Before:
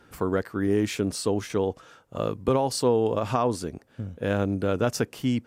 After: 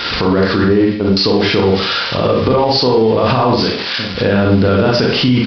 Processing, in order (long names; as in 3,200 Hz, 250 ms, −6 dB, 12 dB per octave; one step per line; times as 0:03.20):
spike at every zero crossing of −25 dBFS
0:00.64–0:01.17: noise gate −22 dBFS, range −29 dB
0:03.63–0:04.15: high-pass filter 980 Hz 6 dB per octave
downward compressor 6 to 1, threshold −28 dBFS, peak gain reduction 10.5 dB
four-comb reverb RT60 0.44 s, combs from 32 ms, DRR −0.5 dB
downsampling to 11,025 Hz
boost into a limiter +26 dB
level −3 dB